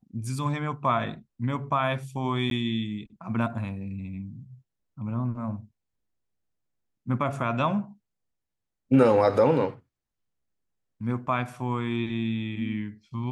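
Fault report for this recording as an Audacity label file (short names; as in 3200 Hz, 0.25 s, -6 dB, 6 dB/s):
2.500000	2.510000	gap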